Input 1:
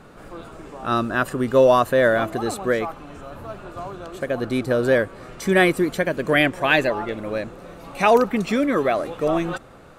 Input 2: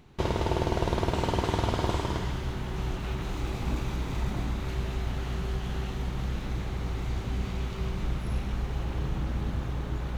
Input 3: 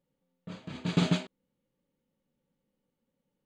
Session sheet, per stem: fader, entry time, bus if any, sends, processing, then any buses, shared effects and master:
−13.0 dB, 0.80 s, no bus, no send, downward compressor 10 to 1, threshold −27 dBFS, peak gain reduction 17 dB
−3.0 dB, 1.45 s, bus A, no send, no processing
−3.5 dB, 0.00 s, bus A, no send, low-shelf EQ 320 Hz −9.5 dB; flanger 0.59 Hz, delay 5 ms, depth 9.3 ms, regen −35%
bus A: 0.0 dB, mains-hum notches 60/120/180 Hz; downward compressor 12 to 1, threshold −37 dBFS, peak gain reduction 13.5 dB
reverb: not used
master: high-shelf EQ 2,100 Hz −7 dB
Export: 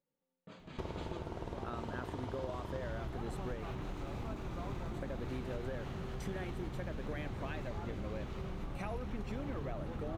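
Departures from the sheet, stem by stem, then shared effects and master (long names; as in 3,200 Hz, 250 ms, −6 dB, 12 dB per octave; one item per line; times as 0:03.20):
stem 2: entry 1.45 s → 0.60 s
stem 3: missing flanger 0.59 Hz, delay 5 ms, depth 9.3 ms, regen −35%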